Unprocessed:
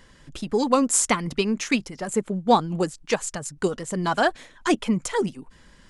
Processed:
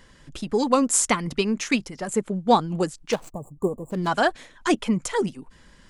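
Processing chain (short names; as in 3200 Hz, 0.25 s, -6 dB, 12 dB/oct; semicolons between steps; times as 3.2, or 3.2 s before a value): 3.12–4.07 median filter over 25 samples; 3.3–3.91 spectral gain 1200–6800 Hz -29 dB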